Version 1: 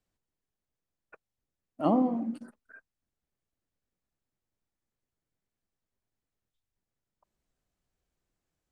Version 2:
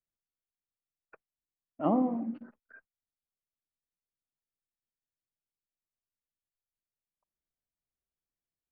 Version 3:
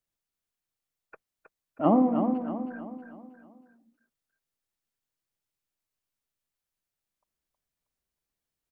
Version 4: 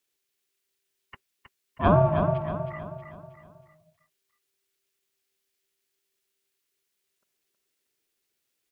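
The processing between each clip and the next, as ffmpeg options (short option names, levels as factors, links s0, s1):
-af "lowpass=f=2600:w=0.5412,lowpass=f=2600:w=1.3066,agate=range=0.2:threshold=0.00126:ratio=16:detection=peak,volume=0.794"
-af "aecho=1:1:318|636|954|1272|1590:0.447|0.197|0.0865|0.0381|0.0167,volume=1.88"
-af "highshelf=f=1600:t=q:w=1.5:g=7.5,aeval=exprs='val(0)*sin(2*PI*390*n/s)':c=same,volume=1.78"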